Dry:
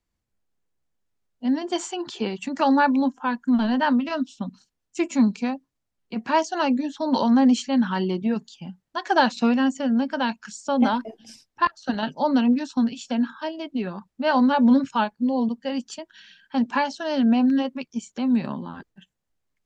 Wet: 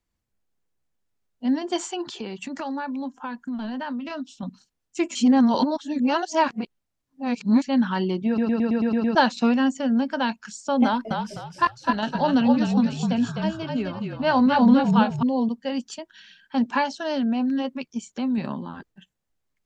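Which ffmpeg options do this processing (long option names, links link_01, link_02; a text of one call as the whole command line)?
ffmpeg -i in.wav -filter_complex "[0:a]asettb=1/sr,asplit=3[link_01][link_02][link_03];[link_01]atrim=end=2.024[link_04];[link_02]atrim=start=2.02:end=4.43,asetpts=PTS-STARTPTS,afade=type=in:duration=0.004:curve=qsin,afade=type=out:start_time=2.406:duration=0.004:curve=qsin,acompressor=threshold=-29dB:ratio=4:attack=3.2:release=140:knee=1:detection=peak[link_05];[link_03]atrim=start=4.426[link_06];[link_04][link_05]acrossfade=duration=0.004:curve1=hsin:curve2=qsin[link_07];[link_07][link_06]acrossfade=duration=0.004:curve1=qsin:curve2=hsin,asettb=1/sr,asplit=3[link_08][link_09][link_10];[link_08]atrim=end=10.854[link_11];[link_09]atrim=start=10.85:end=15.23,asetpts=PTS-STARTPTS,afade=type=in:duration=0.004:curve=qsin,afade=type=out:start_time=4.376:duration=0.004:curve=qsin,asplit=5[link_12][link_13][link_14][link_15][link_16];[link_13]adelay=255,afreqshift=-42,volume=-4dB[link_17];[link_14]adelay=510,afreqshift=-84,volume=-13.6dB[link_18];[link_15]adelay=765,afreqshift=-126,volume=-23.3dB[link_19];[link_16]adelay=1020,afreqshift=-168,volume=-32.9dB[link_20];[link_12][link_17][link_18][link_19][link_20]amix=inputs=5:normalize=0,atrim=end_sample=193158[link_21];[link_10]atrim=start=15.226[link_22];[link_11][link_21]acrossfade=duration=0.004:curve1=hsin:curve2=qsin[link_23];[link_23][link_22]acrossfade=duration=0.004:curve1=qsin:curve2=hsin,asettb=1/sr,asplit=3[link_24][link_25][link_26];[link_24]atrim=end=16.994[link_27];[link_25]atrim=start=16.99:end=18.38,asetpts=PTS-STARTPTS,afade=type=in:duration=0.004:curve=qsin,afade=type=out:start_time=1.386:duration=0.004:curve=qsin,acompressor=threshold=-22dB:ratio=3:attack=3.2:release=140:knee=1:detection=peak[link_28];[link_26]atrim=start=18.376[link_29];[link_27][link_28]acrossfade=duration=0.004:curve1=hsin:curve2=qsin[link_30];[link_30][link_29]acrossfade=duration=0.004:curve1=qsin:curve2=hsin,asplit=11[link_31][link_32][link_33][link_34][link_35][link_36][link_37][link_38][link_39][link_40][link_41];[link_31]atrim=end=5.152[link_42];[link_32]atrim=start=5.148:end=7.622,asetpts=PTS-STARTPTS,areverse[link_43];[link_33]atrim=start=7.618:end=8.382[link_44];[link_34]atrim=start=8.268:end=8.382[link_45];[link_35]atrim=start=8.268:end=8.382[link_46];[link_36]atrim=start=8.268:end=8.382[link_47];[link_37]atrim=start=8.268:end=8.382[link_48];[link_38]atrim=start=8.268:end=8.382[link_49];[link_39]atrim=start=8.268:end=8.382[link_50];[link_40]atrim=start=8.268:end=8.382[link_51];[link_41]atrim=start=9.148[link_52];[link_42][link_43]acrossfade=duration=0.004:curve1=hsin:curve2=hsin[link_53];[link_53][link_44]acrossfade=duration=0.004:curve1=hsin:curve2=hsin[link_54];[link_54][link_45]acrossfade=duration=0.004:curve1=hsin:curve2=hsin[link_55];[link_55][link_46]acrossfade=duration=0.004:curve1=hsin:curve2=hsin[link_56];[link_56][link_47]acrossfade=duration=0.004:curve1=hsin:curve2=hsin[link_57];[link_57][link_48]acrossfade=duration=0.004:curve1=hsin:curve2=hsin[link_58];[link_58][link_49]acrossfade=duration=0.004:curve1=hsin:curve2=hsin[link_59];[link_59][link_50]acrossfade=duration=0.004:curve1=hsin:curve2=hsin[link_60];[link_60][link_51]acrossfade=duration=0.004:curve1=hsin:curve2=hsin[link_61];[link_61][link_52]acrossfade=duration=0.004:curve1=hsin:curve2=hsin" out.wav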